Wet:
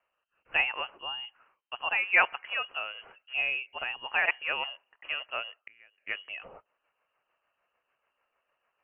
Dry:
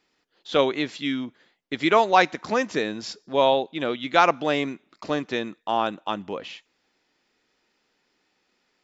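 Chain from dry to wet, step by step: rotary speaker horn 1.2 Hz, later 6.7 Hz, at 3.56; inverted band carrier 3100 Hz; three-band isolator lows -14 dB, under 420 Hz, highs -20 dB, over 2300 Hz; 5.61–6.07 flipped gate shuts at -29 dBFS, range -27 dB

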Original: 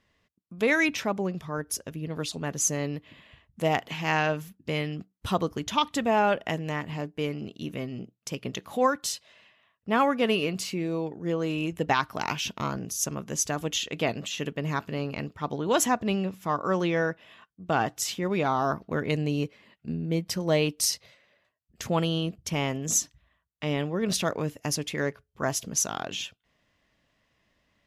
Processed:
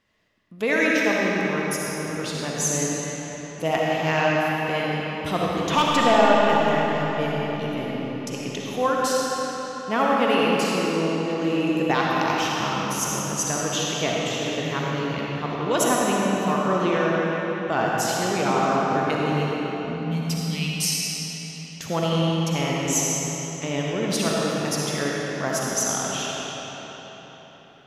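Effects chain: low shelf 83 Hz -8.5 dB; 5.7–6.14 overdrive pedal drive 20 dB, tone 2300 Hz, clips at -11 dBFS; 19.32–20.73 elliptic band-stop 230–2400 Hz; digital reverb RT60 4.6 s, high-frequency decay 0.75×, pre-delay 20 ms, DRR -4.5 dB

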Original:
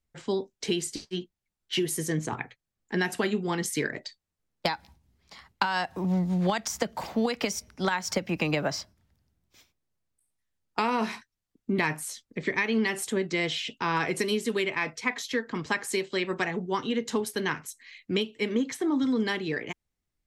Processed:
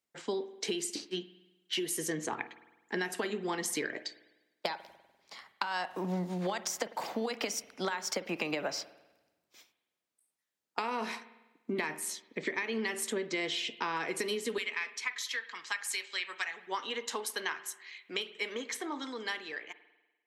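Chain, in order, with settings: ending faded out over 1.36 s; HPF 300 Hz 12 dB/oct, from 14.58 s 1500 Hz, from 16.67 s 700 Hz; compressor 10:1, threshold -30 dBFS, peak gain reduction 10.5 dB; spring tank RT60 1.1 s, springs 49 ms, chirp 65 ms, DRR 14 dB

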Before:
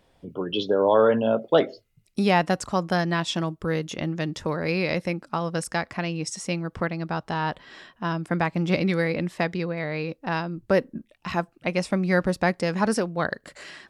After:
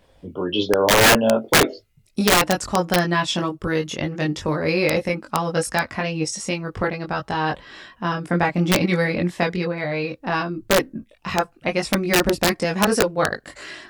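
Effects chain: chorus voices 6, 0.15 Hz, delay 21 ms, depth 2.1 ms; wrapped overs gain 16 dB; gain +8 dB

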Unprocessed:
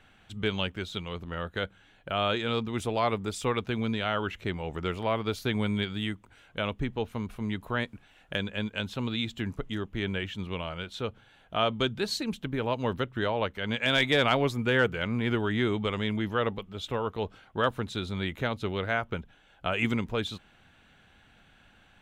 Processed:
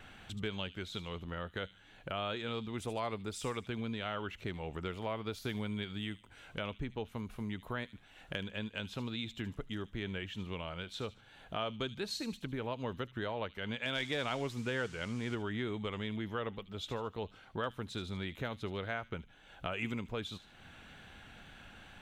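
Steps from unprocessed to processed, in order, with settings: compressor 2:1, threshold -53 dBFS, peak gain reduction 18 dB; 13.99–15.34 band noise 870–7900 Hz -65 dBFS; wow and flutter 25 cents; thin delay 75 ms, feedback 38%, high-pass 3700 Hz, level -9 dB; gain +5.5 dB

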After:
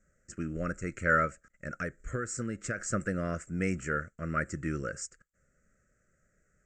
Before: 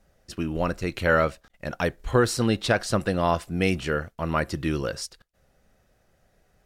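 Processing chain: EQ curve 110 Hz 0 dB, 170 Hz +3 dB, 380 Hz -1 dB, 600 Hz -1 dB, 910 Hz -29 dB, 1300 Hz +7 dB, 2100 Hz +3 dB, 3700 Hz -25 dB, 7500 Hz +14 dB, 11000 Hz -25 dB; 1.25–2.78 compressor 6:1, threshold -23 dBFS, peak gain reduction 9 dB; gain -8 dB

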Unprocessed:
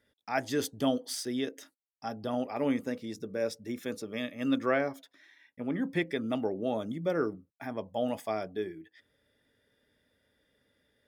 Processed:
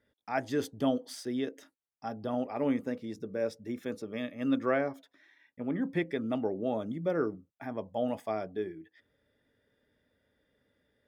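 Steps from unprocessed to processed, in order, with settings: high shelf 2800 Hz -9.5 dB

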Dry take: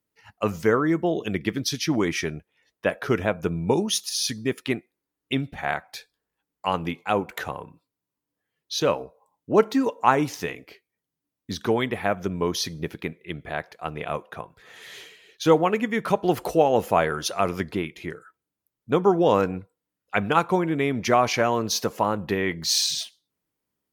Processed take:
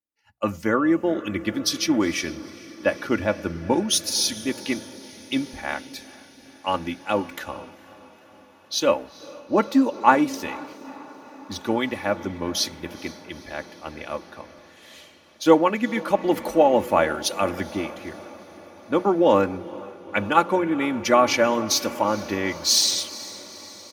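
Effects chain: notches 60/120/180 Hz; comb 3.5 ms, depth 67%; on a send: diffused feedback echo 0.465 s, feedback 74%, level -14.5 dB; on the sum: three-band expander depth 40%; gain -1 dB

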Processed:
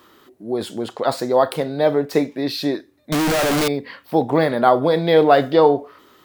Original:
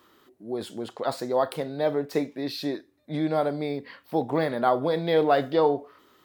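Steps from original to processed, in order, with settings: 3.12–3.68 infinite clipping; gain +8 dB

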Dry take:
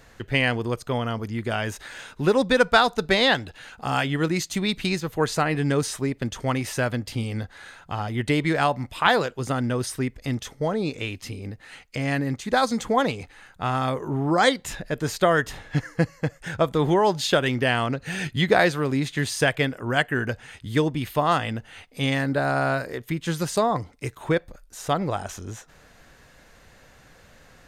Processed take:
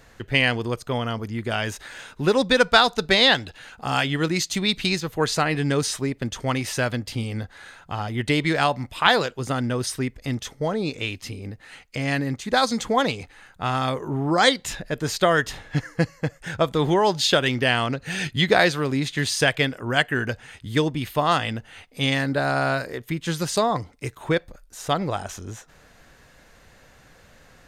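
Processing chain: dynamic EQ 4300 Hz, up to +6 dB, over -39 dBFS, Q 0.71

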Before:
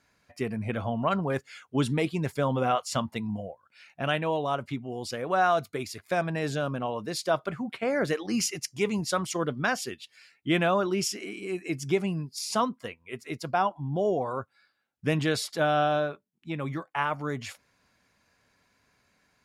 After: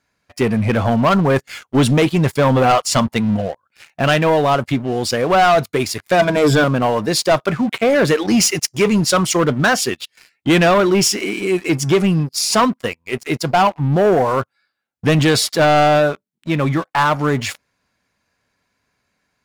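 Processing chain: 6.19–6.64 ripple EQ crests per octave 1.7, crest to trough 16 dB; sample leveller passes 3; gain +4.5 dB

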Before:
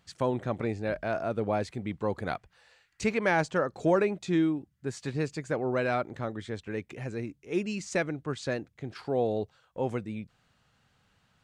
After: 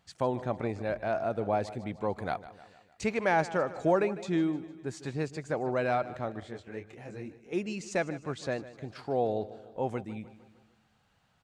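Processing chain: bell 750 Hz +5.5 dB 0.7 oct; on a send: feedback echo 0.152 s, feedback 53%, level -16 dB; 6.4–7.53 on the sum: detuned doubles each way 36 cents; gain -3 dB

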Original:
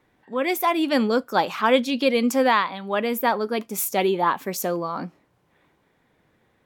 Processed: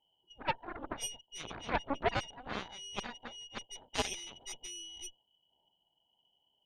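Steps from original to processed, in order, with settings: brick-wall FIR band-stop 210–2100 Hz; inverted band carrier 3100 Hz; added harmonics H 3 -18 dB, 7 -17 dB, 8 -23 dB, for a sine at -17 dBFS; gain +2 dB

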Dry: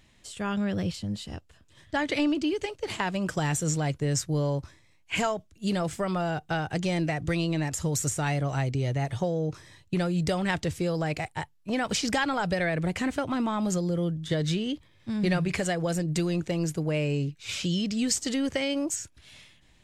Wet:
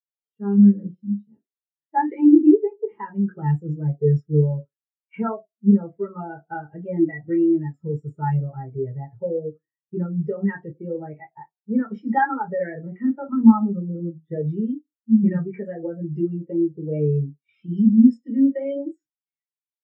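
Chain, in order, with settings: reverb RT60 0.35 s, pre-delay 3 ms, DRR 0 dB; spectral expander 2.5:1; gain -1 dB

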